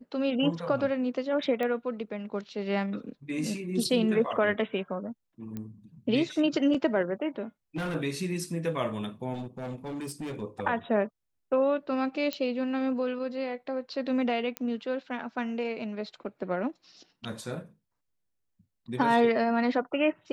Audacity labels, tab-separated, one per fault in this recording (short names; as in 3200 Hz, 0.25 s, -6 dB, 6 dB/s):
1.630000	1.630000	pop -20 dBFS
5.570000	5.570000	pop -24 dBFS
7.760000	7.960000	clipped -28.5 dBFS
9.330000	10.430000	clipped -32.5 dBFS
12.330000	12.330000	pop -16 dBFS
14.570000	14.570000	pop -16 dBFS